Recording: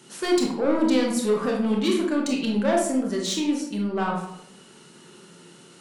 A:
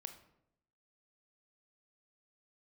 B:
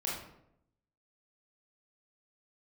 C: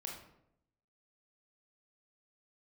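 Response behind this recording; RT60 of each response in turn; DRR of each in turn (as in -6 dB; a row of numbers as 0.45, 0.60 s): C; 0.80, 0.80, 0.80 s; 7.0, -5.5, -1.0 dB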